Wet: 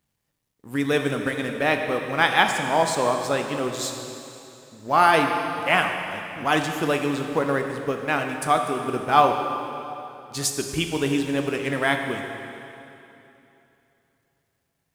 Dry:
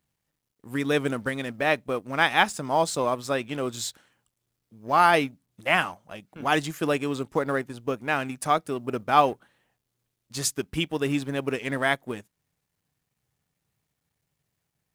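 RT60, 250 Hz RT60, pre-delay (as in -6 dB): 3.0 s, 3.1 s, 5 ms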